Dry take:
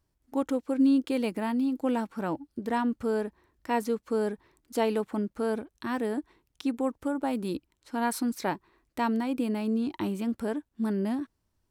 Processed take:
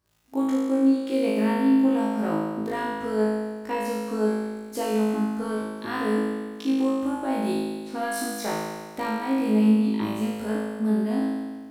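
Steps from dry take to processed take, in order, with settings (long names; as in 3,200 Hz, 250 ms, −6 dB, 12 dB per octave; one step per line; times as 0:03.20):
high-pass filter 70 Hz
downward compressor, threshold −28 dBFS, peak gain reduction 9 dB
surface crackle 52 per second −52 dBFS
on a send: flutter between parallel walls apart 3.2 metres, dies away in 1.5 s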